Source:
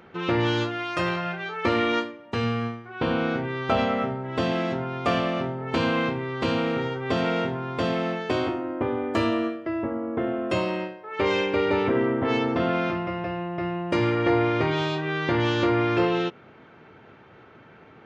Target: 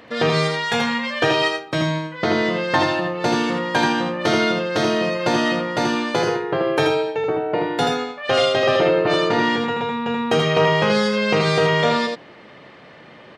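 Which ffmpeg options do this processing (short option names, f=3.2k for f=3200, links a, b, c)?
-af "aecho=1:1:110:0.596,asetrate=59535,aresample=44100,volume=5dB"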